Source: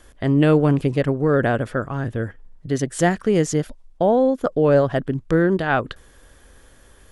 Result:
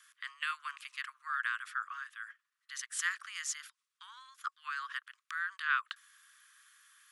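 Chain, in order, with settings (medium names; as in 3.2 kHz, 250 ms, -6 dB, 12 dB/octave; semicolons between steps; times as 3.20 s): steep high-pass 1.1 kHz 96 dB/octave; trim -6.5 dB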